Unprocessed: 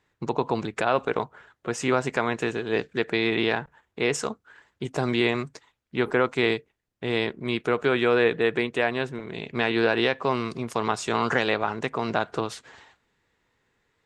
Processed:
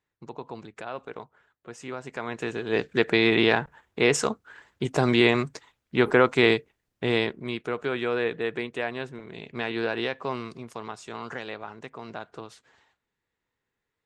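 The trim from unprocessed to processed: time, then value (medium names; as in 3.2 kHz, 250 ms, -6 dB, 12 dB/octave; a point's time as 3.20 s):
1.99 s -13 dB
2.39 s -5 dB
2.99 s +3.5 dB
7.04 s +3.5 dB
7.60 s -6 dB
10.35 s -6 dB
10.94 s -12.5 dB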